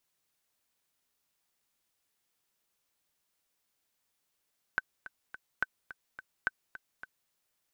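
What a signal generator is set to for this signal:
click track 213 BPM, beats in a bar 3, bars 3, 1,530 Hz, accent 15.5 dB −15 dBFS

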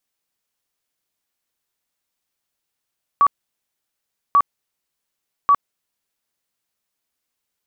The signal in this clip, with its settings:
tone bursts 1,140 Hz, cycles 65, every 1.14 s, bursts 3, −9.5 dBFS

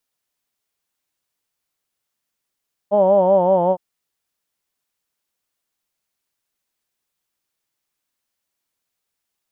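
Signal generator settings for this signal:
vowel from formants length 0.86 s, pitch 199 Hz, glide −2 semitones, F1 590 Hz, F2 900 Hz, F3 3,100 Hz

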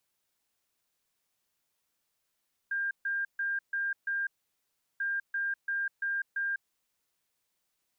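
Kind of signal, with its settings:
beeps in groups sine 1,600 Hz, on 0.20 s, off 0.14 s, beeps 5, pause 0.73 s, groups 2, −28.5 dBFS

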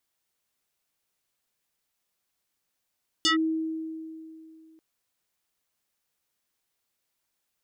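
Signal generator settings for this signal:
two-operator FM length 1.54 s, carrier 320 Hz, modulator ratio 5.06, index 3.9, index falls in 0.12 s linear, decay 2.66 s, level −18.5 dB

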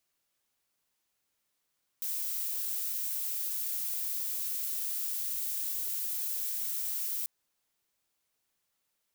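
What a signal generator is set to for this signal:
noise violet, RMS −34 dBFS 5.24 s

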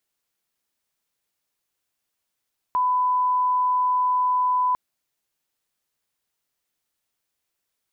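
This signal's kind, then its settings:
line-up tone −18 dBFS 2.00 s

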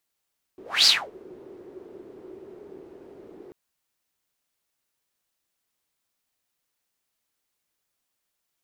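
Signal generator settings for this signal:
pass-by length 2.94 s, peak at 0:00.28, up 0.24 s, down 0.26 s, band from 380 Hz, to 4,700 Hz, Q 7.1, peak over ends 29.5 dB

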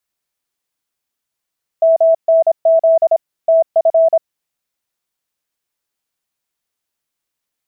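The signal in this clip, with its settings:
Morse code "MNZ TF" 26 words per minute 654 Hz −7 dBFS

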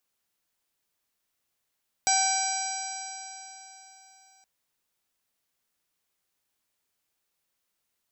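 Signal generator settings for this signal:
stiff-string partials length 2.37 s, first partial 765 Hz, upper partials −9/−8.5/−19.5/−9/−6/−1/−11/−2 dB, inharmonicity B 0.0033, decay 3.65 s, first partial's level −24 dB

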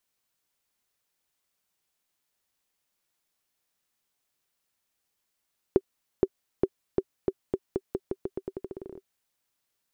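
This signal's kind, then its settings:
bouncing ball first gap 0.47 s, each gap 0.86, 384 Hz, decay 49 ms −8 dBFS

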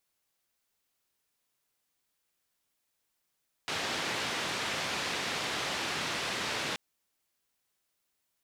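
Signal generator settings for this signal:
band-limited noise 110–3,700 Hz, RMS −34 dBFS 3.08 s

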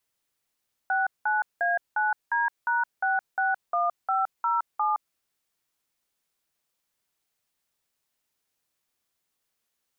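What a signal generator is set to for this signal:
touch tones "69A9D#661507", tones 167 ms, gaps 187 ms, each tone −24.5 dBFS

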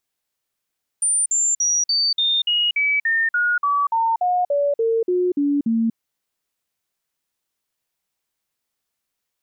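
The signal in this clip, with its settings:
stepped sweep 9,160 Hz down, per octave 3, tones 17, 0.24 s, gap 0.05 s −16 dBFS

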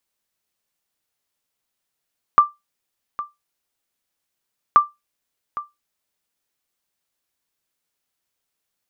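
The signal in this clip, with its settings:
ping with an echo 1,180 Hz, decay 0.19 s, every 2.38 s, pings 2, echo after 0.81 s, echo −16 dB −3 dBFS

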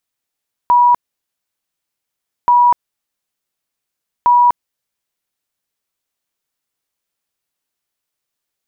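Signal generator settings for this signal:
tone bursts 970 Hz, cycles 239, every 1.78 s, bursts 3, −6.5 dBFS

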